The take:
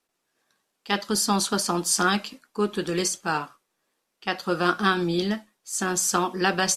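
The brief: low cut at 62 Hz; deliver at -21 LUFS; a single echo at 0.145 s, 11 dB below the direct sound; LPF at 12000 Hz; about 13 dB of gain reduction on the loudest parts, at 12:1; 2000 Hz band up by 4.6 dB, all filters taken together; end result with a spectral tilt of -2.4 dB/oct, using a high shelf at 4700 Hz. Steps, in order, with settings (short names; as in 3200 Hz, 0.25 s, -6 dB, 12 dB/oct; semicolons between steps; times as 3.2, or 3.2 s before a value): HPF 62 Hz; LPF 12000 Hz; bell 2000 Hz +6 dB; high shelf 4700 Hz +3.5 dB; compressor 12:1, threshold -27 dBFS; echo 0.145 s -11 dB; gain +10 dB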